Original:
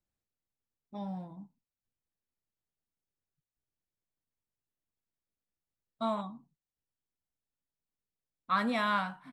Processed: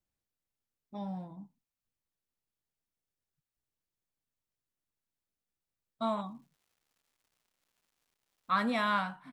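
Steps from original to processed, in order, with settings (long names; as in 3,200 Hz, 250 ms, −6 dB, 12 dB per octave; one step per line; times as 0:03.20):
0:06.19–0:08.72: surface crackle 450 per second −64 dBFS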